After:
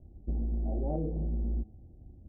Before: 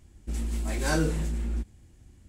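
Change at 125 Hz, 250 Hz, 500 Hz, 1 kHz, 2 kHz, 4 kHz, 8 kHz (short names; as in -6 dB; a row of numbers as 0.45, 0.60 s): -3.0 dB, -4.5 dB, -5.0 dB, -9.5 dB, under -40 dB, under -40 dB, under -40 dB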